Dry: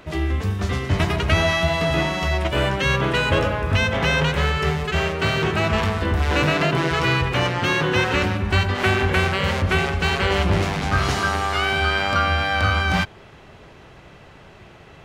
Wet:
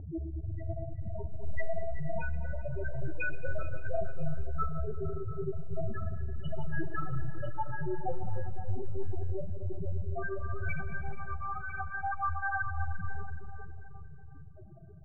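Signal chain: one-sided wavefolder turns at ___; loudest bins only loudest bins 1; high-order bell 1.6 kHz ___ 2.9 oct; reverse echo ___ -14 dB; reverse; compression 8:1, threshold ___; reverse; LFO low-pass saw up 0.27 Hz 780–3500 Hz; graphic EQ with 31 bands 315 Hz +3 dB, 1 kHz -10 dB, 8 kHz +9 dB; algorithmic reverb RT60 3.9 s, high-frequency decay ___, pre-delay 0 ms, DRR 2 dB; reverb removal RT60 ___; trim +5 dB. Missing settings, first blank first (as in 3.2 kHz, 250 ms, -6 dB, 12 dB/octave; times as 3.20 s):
-20.5 dBFS, +10.5 dB, 998 ms, -40 dBFS, 0.4×, 0.77 s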